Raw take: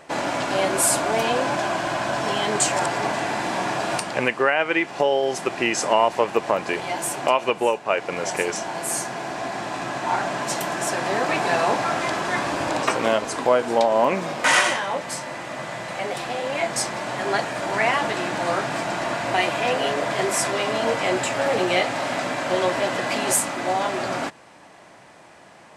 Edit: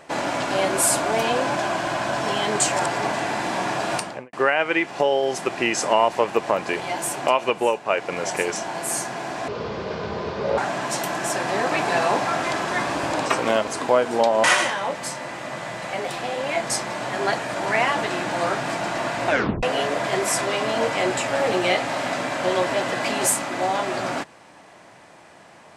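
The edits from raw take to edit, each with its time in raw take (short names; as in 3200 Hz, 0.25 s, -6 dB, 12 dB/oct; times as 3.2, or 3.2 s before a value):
3.97–4.33 studio fade out
9.48–10.15 speed 61%
14.01–14.5 cut
19.33 tape stop 0.36 s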